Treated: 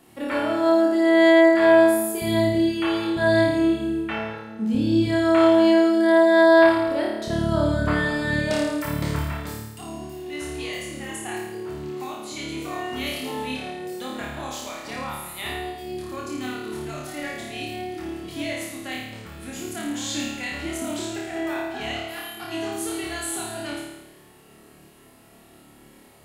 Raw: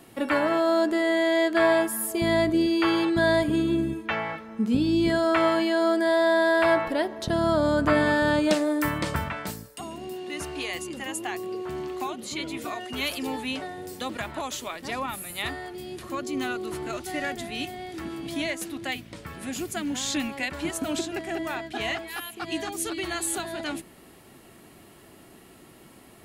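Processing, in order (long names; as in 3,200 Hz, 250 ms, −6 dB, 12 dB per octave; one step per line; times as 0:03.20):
flutter between parallel walls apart 4.7 metres, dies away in 0.96 s
level −5 dB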